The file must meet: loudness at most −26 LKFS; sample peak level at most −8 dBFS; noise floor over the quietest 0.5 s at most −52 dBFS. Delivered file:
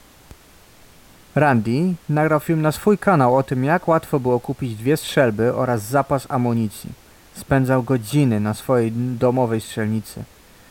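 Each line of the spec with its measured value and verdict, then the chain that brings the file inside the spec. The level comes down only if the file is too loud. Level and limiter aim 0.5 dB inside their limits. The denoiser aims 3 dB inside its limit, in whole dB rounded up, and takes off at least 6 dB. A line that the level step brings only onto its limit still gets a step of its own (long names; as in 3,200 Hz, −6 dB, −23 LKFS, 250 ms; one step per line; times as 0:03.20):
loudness −19.5 LKFS: out of spec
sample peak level −5.0 dBFS: out of spec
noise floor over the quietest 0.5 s −48 dBFS: out of spec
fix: level −7 dB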